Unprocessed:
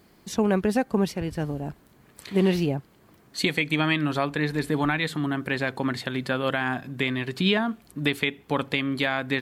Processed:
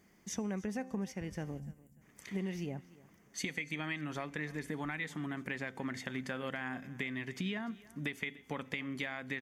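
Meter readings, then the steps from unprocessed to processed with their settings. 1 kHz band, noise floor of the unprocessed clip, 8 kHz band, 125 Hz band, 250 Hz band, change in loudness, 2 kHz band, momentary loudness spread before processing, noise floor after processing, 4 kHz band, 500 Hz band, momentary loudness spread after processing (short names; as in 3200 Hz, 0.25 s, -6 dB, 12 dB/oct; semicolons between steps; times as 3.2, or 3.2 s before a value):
-15.5 dB, -58 dBFS, -5.5 dB, -13.5 dB, -13.5 dB, -13.5 dB, -12.0 dB, 7 LU, -65 dBFS, -16.5 dB, -16.5 dB, 5 LU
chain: notch 4100 Hz, Q 5.2; spectral gain 1.6–2.01, 260–6800 Hz -23 dB; thirty-one-band EQ 200 Hz +6 dB, 2000 Hz +9 dB, 6300 Hz +11 dB; compressor 5:1, threshold -24 dBFS, peak gain reduction 10 dB; resonator 260 Hz, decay 0.85 s, mix 50%; on a send: feedback echo 0.295 s, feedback 25%, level -20.5 dB; on the sum: gain -5 dB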